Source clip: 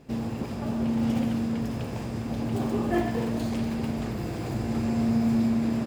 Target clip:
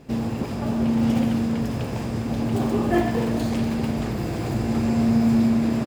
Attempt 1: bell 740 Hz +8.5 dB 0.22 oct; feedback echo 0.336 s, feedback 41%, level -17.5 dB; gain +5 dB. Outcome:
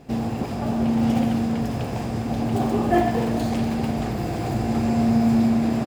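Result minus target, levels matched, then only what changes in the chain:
1000 Hz band +4.5 dB
remove: bell 740 Hz +8.5 dB 0.22 oct

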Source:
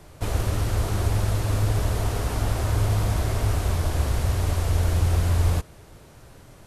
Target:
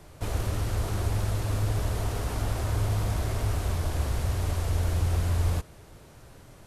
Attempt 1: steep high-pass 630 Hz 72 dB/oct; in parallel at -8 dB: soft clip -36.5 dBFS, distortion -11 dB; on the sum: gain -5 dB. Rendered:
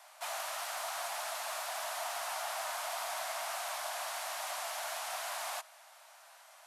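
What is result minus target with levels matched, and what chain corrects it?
500 Hz band +2.5 dB
in parallel at -8 dB: soft clip -36.5 dBFS, distortion -4 dB; on the sum: gain -5 dB

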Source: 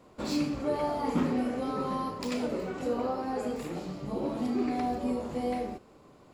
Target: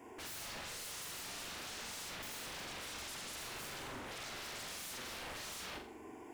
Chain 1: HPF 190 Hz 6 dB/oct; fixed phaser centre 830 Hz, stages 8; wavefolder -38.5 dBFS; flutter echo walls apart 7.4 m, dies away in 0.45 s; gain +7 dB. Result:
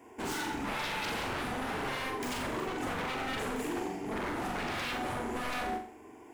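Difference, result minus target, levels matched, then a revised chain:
wavefolder: distortion -30 dB
HPF 190 Hz 6 dB/oct; fixed phaser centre 830 Hz, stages 8; wavefolder -49.5 dBFS; flutter echo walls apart 7.4 m, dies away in 0.45 s; gain +7 dB

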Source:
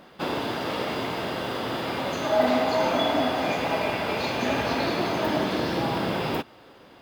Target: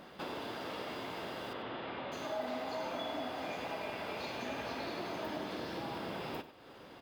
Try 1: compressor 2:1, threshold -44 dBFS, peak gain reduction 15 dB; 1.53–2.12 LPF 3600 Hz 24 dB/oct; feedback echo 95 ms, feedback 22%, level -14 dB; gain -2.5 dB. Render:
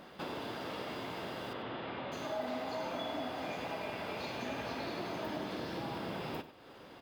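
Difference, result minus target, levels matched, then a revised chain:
125 Hz band +3.0 dB
compressor 2:1, threshold -44 dBFS, peak gain reduction 15 dB; dynamic EQ 130 Hz, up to -4 dB, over -54 dBFS, Q 0.83; 1.53–2.12 LPF 3600 Hz 24 dB/oct; feedback echo 95 ms, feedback 22%, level -14 dB; gain -2.5 dB

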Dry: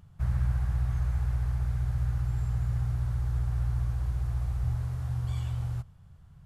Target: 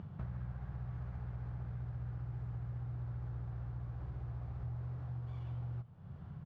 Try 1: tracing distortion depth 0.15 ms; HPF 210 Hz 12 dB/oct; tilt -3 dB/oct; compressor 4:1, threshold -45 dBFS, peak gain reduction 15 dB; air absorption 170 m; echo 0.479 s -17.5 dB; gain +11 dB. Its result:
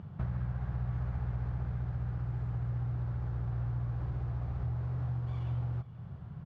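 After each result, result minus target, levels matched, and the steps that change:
echo 0.171 s late; compressor: peak gain reduction -7.5 dB
change: echo 0.308 s -17.5 dB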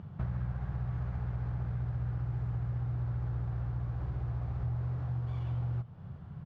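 compressor: peak gain reduction -7.5 dB
change: compressor 4:1, threshold -55 dBFS, peak gain reduction 22.5 dB

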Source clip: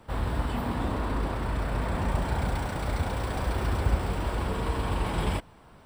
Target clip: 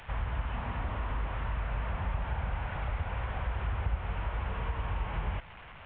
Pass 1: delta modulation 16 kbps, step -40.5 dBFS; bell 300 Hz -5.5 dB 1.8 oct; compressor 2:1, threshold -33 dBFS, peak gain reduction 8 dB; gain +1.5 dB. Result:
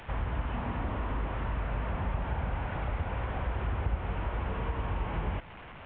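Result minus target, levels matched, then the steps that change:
250 Hz band +5.0 dB
change: bell 300 Hz -15 dB 1.8 oct

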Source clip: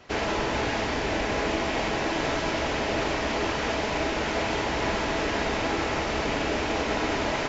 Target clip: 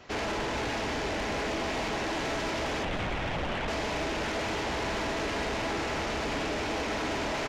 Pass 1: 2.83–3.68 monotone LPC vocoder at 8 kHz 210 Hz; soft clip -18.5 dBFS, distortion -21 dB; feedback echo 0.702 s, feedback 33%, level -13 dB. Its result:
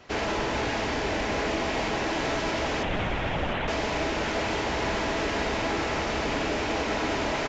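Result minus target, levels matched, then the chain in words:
soft clip: distortion -11 dB
2.83–3.68 monotone LPC vocoder at 8 kHz 210 Hz; soft clip -28 dBFS, distortion -10 dB; feedback echo 0.702 s, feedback 33%, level -13 dB

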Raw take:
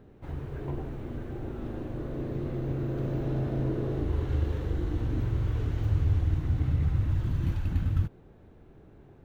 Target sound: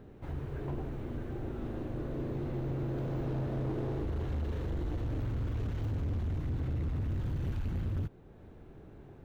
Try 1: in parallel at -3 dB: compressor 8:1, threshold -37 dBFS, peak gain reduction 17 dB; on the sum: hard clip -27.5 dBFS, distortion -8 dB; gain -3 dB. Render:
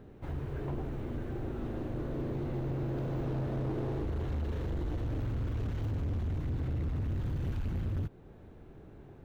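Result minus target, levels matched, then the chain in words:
compressor: peak gain reduction -7 dB
in parallel at -3 dB: compressor 8:1, threshold -45 dBFS, peak gain reduction 24 dB; on the sum: hard clip -27.5 dBFS, distortion -8 dB; gain -3 dB

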